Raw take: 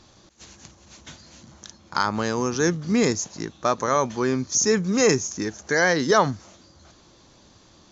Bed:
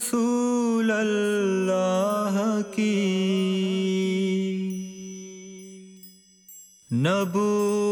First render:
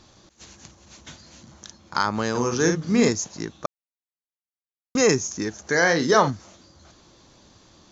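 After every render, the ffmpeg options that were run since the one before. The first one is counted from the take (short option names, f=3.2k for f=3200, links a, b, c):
-filter_complex "[0:a]asettb=1/sr,asplit=3[a][b][c];[a]atrim=end=2.304[d];[b]atrim=start=2.3:end=3.09,asetpts=PTS-STARTPTS,afade=t=in:d=0.004:c=qsin,afade=t=out:st=0.786:d=0.004:c=qsin,asplit=2[e][f];[f]adelay=50,volume=-5dB[g];[e][g]amix=inputs=2:normalize=0,atrim=end_sample=34839[h];[c]atrim=start=3.086[i];[d][h]acrossfade=d=0.004:c1=hsin:c2=qsin[j];[j][i]acrossfade=d=0.004:c1=qsin:c2=hsin,asettb=1/sr,asplit=3[k][l][m];[k]atrim=end=5.684[n];[l]atrim=start=5.68:end=6.3,asetpts=PTS-STARTPTS,afade=t=in:d=0.004:c=qsin,afade=t=out:st=0.616:d=0.004:c=qsin,asplit=2[o][p];[p]adelay=41,volume=-9dB[q];[o][q]amix=inputs=2:normalize=0,atrim=end_sample=27342[r];[m]atrim=start=6.296[s];[n][r]acrossfade=d=0.004:c1=hsin:c2=qsin[t];[t][s]acrossfade=d=0.004:c1=qsin:c2=hsin,asplit=3[u][v][w];[u]atrim=end=3.66,asetpts=PTS-STARTPTS,afade=t=out:st=3.656:d=0.004:c=hsin[x];[v]atrim=start=3.66:end=4.95,asetpts=PTS-STARTPTS,volume=0[y];[w]atrim=start=4.95,asetpts=PTS-STARTPTS,afade=t=in:d=0.004:c=hsin[z];[x][y][z]concat=n=3:v=0:a=1"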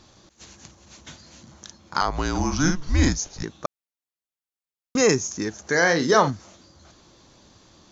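-filter_complex "[0:a]asettb=1/sr,asplit=3[a][b][c];[a]atrim=end=2.014[d];[b]atrim=start=2.01:end=3.43,asetpts=PTS-STARTPTS,afade=t=in:d=0.004:c=qsin,afade=t=out:st=1.416:d=0.004:c=qsin,afreqshift=-160[e];[c]atrim=start=3.426[f];[d][e]acrossfade=d=0.004:c1=hsin:c2=qsin[g];[g][f]acrossfade=d=0.004:c1=qsin:c2=hsin"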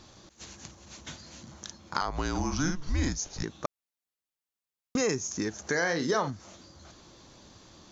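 -af "acompressor=threshold=-29dB:ratio=2.5"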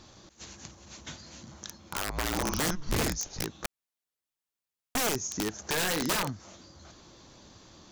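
-af "aeval=exprs='(mod(13.3*val(0)+1,2)-1)/13.3':c=same"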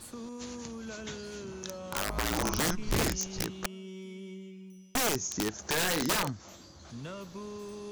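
-filter_complex "[1:a]volume=-19.5dB[a];[0:a][a]amix=inputs=2:normalize=0"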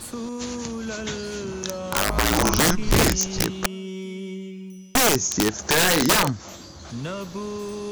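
-af "volume=10.5dB"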